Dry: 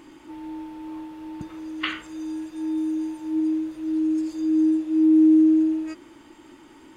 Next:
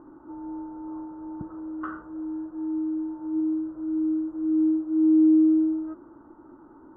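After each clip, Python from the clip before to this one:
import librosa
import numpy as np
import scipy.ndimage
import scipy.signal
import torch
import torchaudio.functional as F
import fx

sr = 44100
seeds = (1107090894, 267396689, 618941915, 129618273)

y = scipy.signal.sosfilt(scipy.signal.ellip(4, 1.0, 40, 1400.0, 'lowpass', fs=sr, output='sos'), x)
y = fx.dynamic_eq(y, sr, hz=550.0, q=0.88, threshold_db=-34.0, ratio=4.0, max_db=-4)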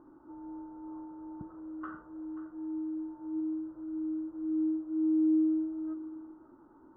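y = x + 10.0 ** (-14.5 / 20.0) * np.pad(x, (int(535 * sr / 1000.0), 0))[:len(x)]
y = y * librosa.db_to_amplitude(-8.0)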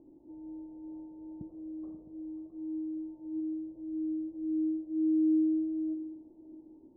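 y = scipy.signal.sosfilt(scipy.signal.cheby2(4, 40, 1300.0, 'lowpass', fs=sr, output='sos'), x)
y = y + 10.0 ** (-14.5 / 20.0) * np.pad(y, (int(663 * sr / 1000.0), 0))[:len(y)]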